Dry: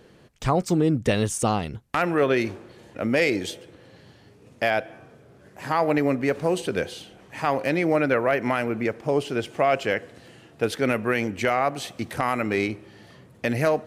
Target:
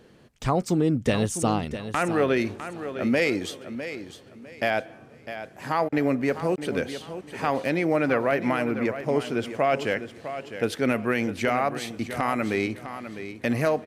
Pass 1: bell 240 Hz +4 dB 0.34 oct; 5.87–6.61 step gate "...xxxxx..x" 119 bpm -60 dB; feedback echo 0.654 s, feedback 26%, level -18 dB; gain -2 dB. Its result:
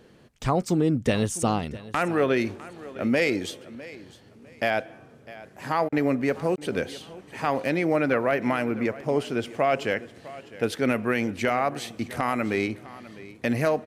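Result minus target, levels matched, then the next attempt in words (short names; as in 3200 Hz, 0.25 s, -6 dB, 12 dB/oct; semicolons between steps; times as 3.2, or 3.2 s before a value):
echo-to-direct -7 dB
bell 240 Hz +4 dB 0.34 oct; 5.87–6.61 step gate "...xxxxx..x" 119 bpm -60 dB; feedback echo 0.654 s, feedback 26%, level -11 dB; gain -2 dB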